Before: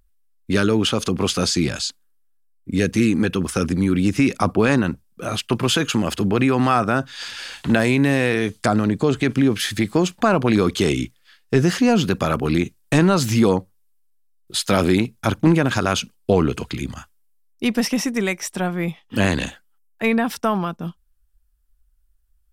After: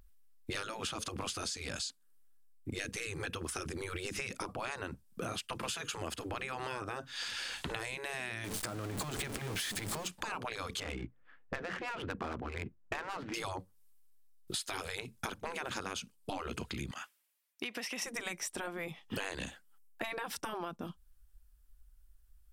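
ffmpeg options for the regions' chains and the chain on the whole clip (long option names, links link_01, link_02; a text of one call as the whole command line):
ffmpeg -i in.wav -filter_complex "[0:a]asettb=1/sr,asplit=3[link_01][link_02][link_03];[link_01]atrim=end=8.444[link_04];[link_02]atrim=start=8.44:end=10.08,asetpts=PTS-STARTPTS,afade=type=in:duration=0.004:curve=qsin,afade=type=out:start_time=1.636:duration=0.004:curve=qsin,aeval=exprs='val(0)+0.5*0.0891*sgn(val(0))':channel_layout=same,acompressor=threshold=-21dB:ratio=3:attack=3.2:release=140:knee=1:detection=peak[link_05];[link_03]atrim=start=10.076[link_06];[link_04][link_05]acrossfade=duration=0.004:curve1=hsin:curve2=qsin[link_07];[link_07][link_06]acrossfade=duration=0.004:curve1=qsin:curve2=hsin,asettb=1/sr,asplit=3[link_08][link_09][link_10];[link_08]atrim=end=10.804[link_11];[link_09]atrim=start=10.8:end=13.34,asetpts=PTS-STARTPTS,afade=type=in:duration=0.004:curve=qsin,afade=type=out:start_time=2.536:duration=0.004:curve=qsin,lowpass=2400,adynamicsmooth=sensitivity=2.5:basefreq=1200[link_12];[link_10]atrim=start=13.336[link_13];[link_11][link_12]acrossfade=duration=0.004:curve1=hsin:curve2=qsin[link_14];[link_14][link_13]acrossfade=duration=0.004:curve1=qsin:curve2=hsin,asettb=1/sr,asplit=3[link_15][link_16][link_17];[link_15]atrim=end=16.914[link_18];[link_16]atrim=start=16.91:end=18.02,asetpts=PTS-STARTPTS,afade=type=in:duration=0.004:curve=qsin,afade=type=out:start_time=1.106:duration=0.004:curve=qsin,highpass=410,equalizer=frequency=2400:width_type=o:width=1.4:gain=8.5,acompressor=threshold=-34dB:ratio=2.5:attack=3.2:release=140:knee=1:detection=peak[link_19];[link_17]atrim=start=18.016[link_20];[link_18][link_19]acrossfade=duration=0.004:curve1=hsin:curve2=qsin[link_21];[link_21][link_20]acrossfade=duration=0.004:curve1=qsin:curve2=hsin,afftfilt=real='re*lt(hypot(re,im),0.398)':imag='im*lt(hypot(re,im),0.398)':win_size=1024:overlap=0.75,adynamicequalizer=threshold=0.00794:dfrequency=8700:dqfactor=2:tfrequency=8700:tqfactor=2:attack=5:release=100:ratio=0.375:range=2:mode=boostabove:tftype=bell,acompressor=threshold=-38dB:ratio=8,volume=1.5dB" out.wav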